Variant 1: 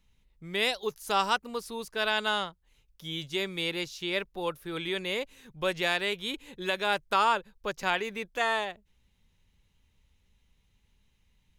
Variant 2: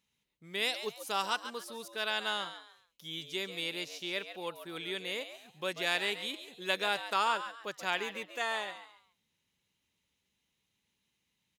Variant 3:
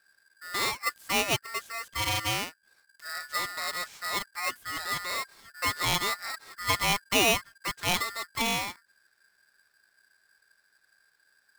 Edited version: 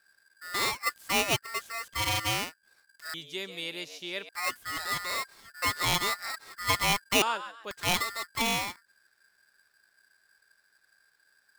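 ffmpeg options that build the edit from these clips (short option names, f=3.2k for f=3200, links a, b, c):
-filter_complex "[1:a]asplit=2[a][b];[2:a]asplit=3[c][d][e];[c]atrim=end=3.142[f];[a]atrim=start=3.138:end=4.292[g];[d]atrim=start=4.288:end=7.222[h];[b]atrim=start=7.218:end=7.712[i];[e]atrim=start=7.708[j];[f][g]acrossfade=d=0.004:c1=hsin:c2=hsin[k];[k][h]acrossfade=d=0.004:c1=hsin:c2=hsin[l];[l][i]acrossfade=d=0.004:c1=hsin:c2=hsin[m];[m][j]acrossfade=d=0.004:c1=hsin:c2=hsin"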